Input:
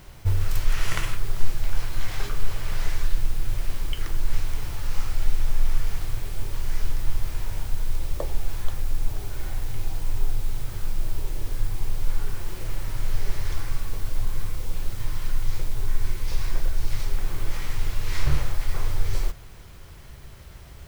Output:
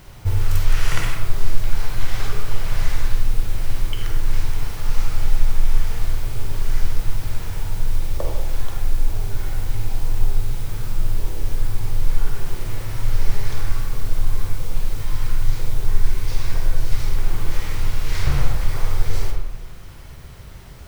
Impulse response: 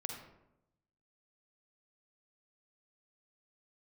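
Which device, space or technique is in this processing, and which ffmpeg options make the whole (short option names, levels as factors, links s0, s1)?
bathroom: -filter_complex "[1:a]atrim=start_sample=2205[s0];[0:a][s0]afir=irnorm=-1:irlink=0,volume=1.78"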